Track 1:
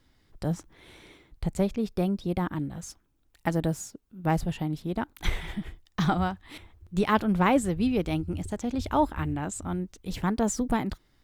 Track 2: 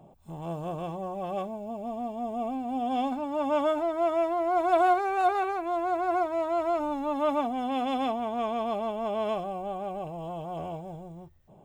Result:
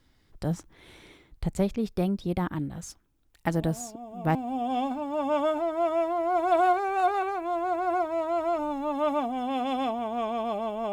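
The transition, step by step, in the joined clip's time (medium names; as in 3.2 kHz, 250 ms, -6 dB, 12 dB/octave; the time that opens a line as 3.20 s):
track 1
3.54 s: add track 2 from 1.75 s 0.81 s -9 dB
4.35 s: go over to track 2 from 2.56 s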